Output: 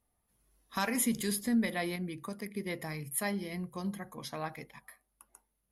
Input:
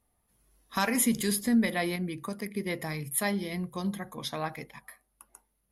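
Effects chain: 2.86–4.41 s: band-stop 3.6 kHz, Q 6.6; trim -4.5 dB

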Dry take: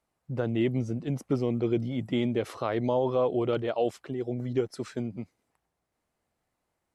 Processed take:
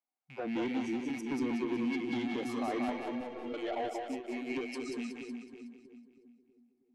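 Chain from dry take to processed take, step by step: rattle on loud lows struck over -39 dBFS, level -24 dBFS; frequency weighting A; spectral noise reduction 18 dB; dynamic bell 360 Hz, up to +4 dB, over -40 dBFS, Q 0.81; peak limiter -24.5 dBFS, peak gain reduction 7.5 dB; small resonant body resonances 260/750/2200 Hz, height 13 dB, ringing for 40 ms; saturation -27.5 dBFS, distortion -11 dB; 2.92–3.54 s: inharmonic resonator 100 Hz, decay 0.28 s, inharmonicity 0.03; two-band feedback delay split 430 Hz, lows 320 ms, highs 185 ms, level -3.5 dB; endings held to a fixed fall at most 110 dB/s; trim -2.5 dB

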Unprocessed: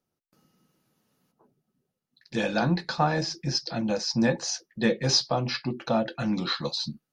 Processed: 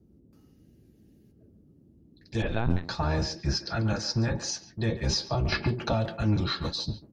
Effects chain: octave divider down 1 oct, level +3 dB; 0.54–1.49 s: spectral replace 670–1500 Hz after; 3.43–4.34 s: peaking EQ 1.4 kHz +10.5 dB 0.61 oct; peak limiter -16 dBFS, peak gain reduction 8 dB; comb of notches 250 Hz; band noise 45–320 Hz -57 dBFS; 2.42–2.85 s: LPC vocoder at 8 kHz pitch kept; speakerphone echo 140 ms, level -11 dB; 5.52–6.06 s: three bands compressed up and down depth 100%; trim -1 dB

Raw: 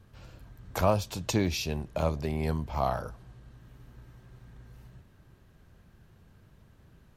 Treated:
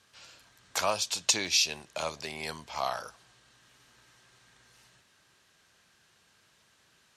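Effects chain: frequency weighting ITU-R 468; trim -1 dB

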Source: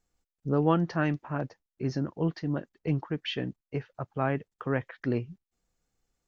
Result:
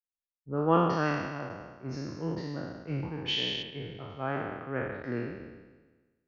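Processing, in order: spectral sustain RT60 2.61 s; 3.62–4.08 s: low-pass 2.6 kHz -> 4.4 kHz 12 dB/octave; three bands expanded up and down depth 100%; trim -7.5 dB

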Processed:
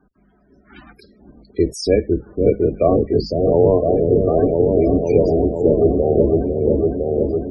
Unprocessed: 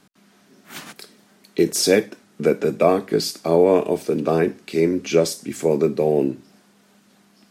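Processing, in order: octave divider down 2 oct, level 0 dB; dynamic bell 1.5 kHz, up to -3 dB, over -37 dBFS, Q 2; on a send: delay with an opening low-pass 505 ms, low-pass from 400 Hz, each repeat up 1 oct, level 0 dB; on the sum: loudest bins only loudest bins 32; peaking EQ 540 Hz +5.5 dB 2.8 oct; trim -4.5 dB

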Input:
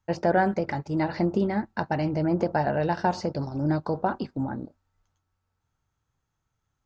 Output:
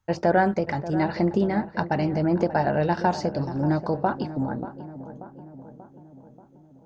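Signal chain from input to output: filtered feedback delay 585 ms, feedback 60%, low-pass 1.4 kHz, level -13 dB; trim +2 dB

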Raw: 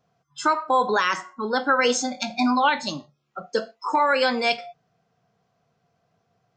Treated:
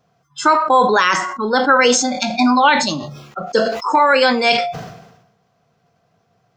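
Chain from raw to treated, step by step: decay stretcher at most 58 dB/s; trim +7 dB

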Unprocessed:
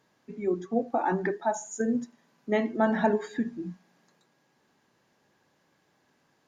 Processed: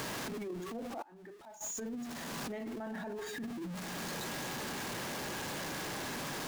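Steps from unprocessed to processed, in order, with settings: jump at every zero crossing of -34.5 dBFS; peak limiter -21 dBFS, peak gain reduction 9.5 dB; 1.02–1.61 s: inverted gate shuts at -28 dBFS, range -30 dB; transient shaper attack -12 dB, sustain +6 dB; compression 8:1, threshold -43 dBFS, peak gain reduction 16.5 dB; trim +3.5 dB

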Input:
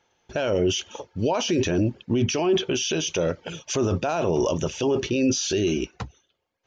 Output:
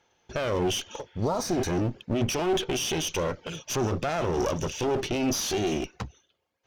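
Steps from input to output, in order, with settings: one-sided clip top -33.5 dBFS; spectral replace 1.08–1.67 s, 1.4–3.6 kHz both

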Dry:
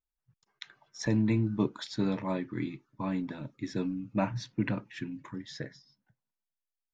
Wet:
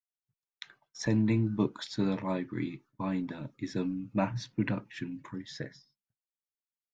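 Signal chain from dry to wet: expander -54 dBFS

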